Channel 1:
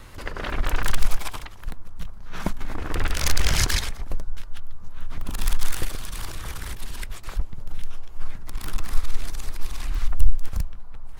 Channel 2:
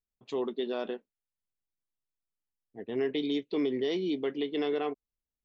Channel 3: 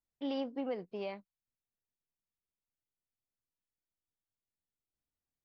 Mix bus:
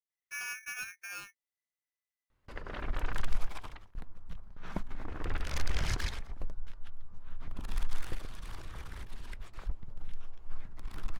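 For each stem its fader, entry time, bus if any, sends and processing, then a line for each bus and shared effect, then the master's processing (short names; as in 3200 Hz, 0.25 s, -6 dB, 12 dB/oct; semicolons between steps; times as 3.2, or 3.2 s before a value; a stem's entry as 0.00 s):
-10.0 dB, 2.30 s, no send, LPF 2600 Hz 6 dB/oct; gate with hold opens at -27 dBFS
off
-4.0 dB, 0.10 s, no send, polarity switched at an audio rate 2000 Hz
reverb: off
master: dry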